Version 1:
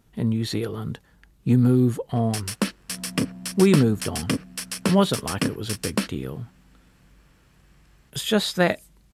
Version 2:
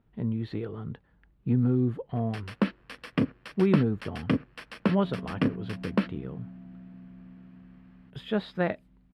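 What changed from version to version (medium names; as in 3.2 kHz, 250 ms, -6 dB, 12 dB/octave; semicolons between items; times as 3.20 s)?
speech -6.0 dB; second sound: entry +2.15 s; master: add distance through air 430 m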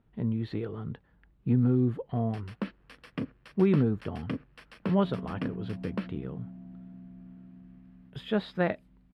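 first sound -8.5 dB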